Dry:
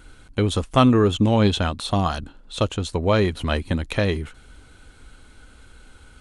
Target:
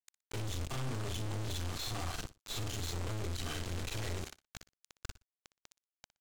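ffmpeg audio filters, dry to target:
-filter_complex "[0:a]afftfilt=real='re':imag='-im':win_size=4096:overlap=0.75,aemphasis=mode=production:type=75kf,bandreject=f=1.8k:w=16,aecho=1:1:2.6:0.82,acrossover=split=200[a][b];[b]acompressor=threshold=-34dB:ratio=4[c];[a][c]amix=inputs=2:normalize=0,adynamicequalizer=threshold=0.00355:dfrequency=590:dqfactor=3.8:tfrequency=590:tqfactor=3.8:attack=5:release=100:ratio=0.375:range=2:mode=cutabove:tftype=bell,aresample=16000,acrusher=bits=5:mix=0:aa=0.000001,aresample=44100,aeval=exprs='(tanh(112*val(0)+0.65)-tanh(0.65))/112':c=same,aecho=1:1:60|120:0.141|0.0268,volume=4dB"

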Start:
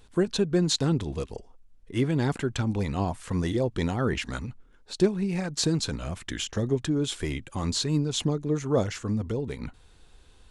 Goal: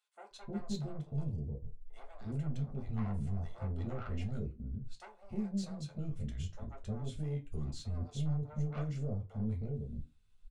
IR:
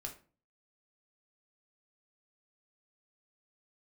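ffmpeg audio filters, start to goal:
-filter_complex "[0:a]afwtdn=0.0398,equalizer=f=420:w=0.58:g=-7.5,asoftclip=type=tanh:threshold=-32dB,acrossover=split=610[a][b];[a]adelay=310[c];[c][b]amix=inputs=2:normalize=0[d];[1:a]atrim=start_sample=2205,asetrate=74970,aresample=44100[e];[d][e]afir=irnorm=-1:irlink=0,volume=3dB"

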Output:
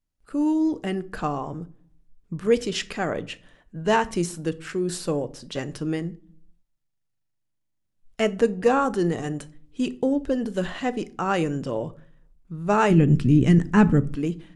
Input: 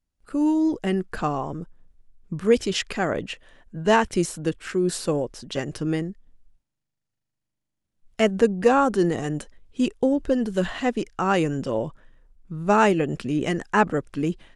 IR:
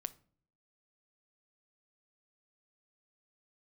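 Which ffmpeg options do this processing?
-filter_complex "[1:a]atrim=start_sample=2205[a];[0:a][a]afir=irnorm=-1:irlink=0,asplit=3[b][c][d];[b]afade=t=out:st=12.9:d=0.02[e];[c]asubboost=boost=7.5:cutoff=220,afade=t=in:st=12.9:d=0.02,afade=t=out:st=14.14:d=0.02[f];[d]afade=t=in:st=14.14:d=0.02[g];[e][f][g]amix=inputs=3:normalize=0"

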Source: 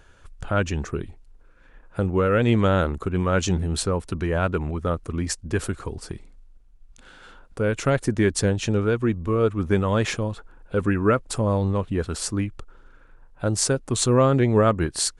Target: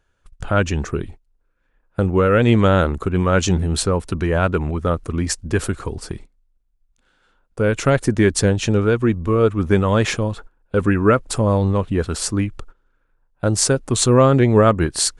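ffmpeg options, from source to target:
-af "agate=range=-19dB:threshold=-40dB:ratio=16:detection=peak,volume=5dB"

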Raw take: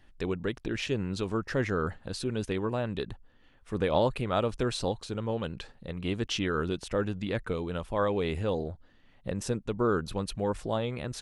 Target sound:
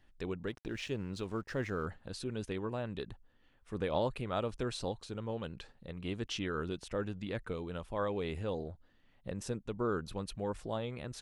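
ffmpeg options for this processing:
-filter_complex "[0:a]asettb=1/sr,asplit=3[a][b][c];[a]atrim=end=0.474[d];[b]atrim=start=0.47:end=1.86,asetpts=PTS-STARTPTS,afade=t=in:d=0.004:c=qsin,afade=t=out:st=1.386:d=0.004:c=qsin,aeval=exprs='sgn(val(0))*max(abs(val(0))-0.00168,0)':c=same[e];[c]atrim=start=1.856[f];[d][e]acrossfade=d=0.004:c1=hsin:c2=qsin[g];[g][f]acrossfade=d=0.004:c1=qsin:c2=hsin,volume=-7dB"

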